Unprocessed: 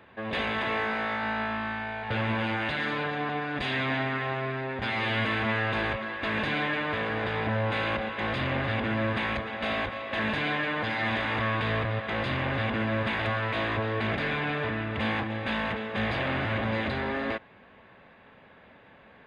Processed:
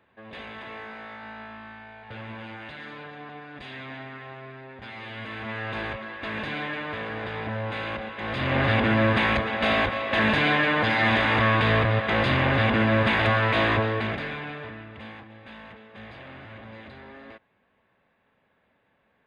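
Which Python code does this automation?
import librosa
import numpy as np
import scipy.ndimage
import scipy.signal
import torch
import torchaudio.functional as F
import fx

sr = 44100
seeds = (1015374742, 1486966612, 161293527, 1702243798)

y = fx.gain(x, sr, db=fx.line((5.15, -10.5), (5.77, -3.0), (8.21, -3.0), (8.63, 7.0), (13.73, 7.0), (14.27, -3.5), (15.21, -14.5)))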